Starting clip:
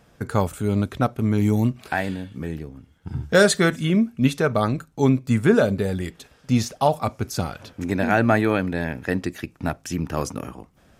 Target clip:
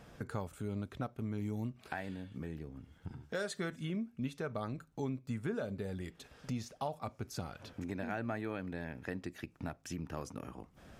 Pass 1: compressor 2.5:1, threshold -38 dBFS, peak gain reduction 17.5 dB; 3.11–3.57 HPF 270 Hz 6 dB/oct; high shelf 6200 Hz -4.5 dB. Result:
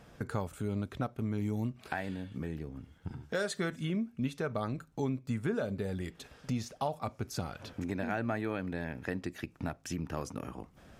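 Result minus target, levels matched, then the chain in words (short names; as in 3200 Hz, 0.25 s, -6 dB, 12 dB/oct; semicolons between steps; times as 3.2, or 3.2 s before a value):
compressor: peak gain reduction -4.5 dB
compressor 2.5:1, threshold -45.5 dBFS, peak gain reduction 22 dB; 3.11–3.57 HPF 270 Hz 6 dB/oct; high shelf 6200 Hz -4.5 dB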